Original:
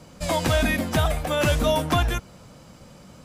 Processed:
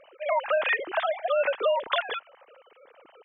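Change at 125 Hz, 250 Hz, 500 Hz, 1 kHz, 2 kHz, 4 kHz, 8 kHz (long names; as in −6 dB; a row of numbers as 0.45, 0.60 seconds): below −40 dB, −24.0 dB, −0.5 dB, −1.5 dB, −0.5 dB, −6.5 dB, below −40 dB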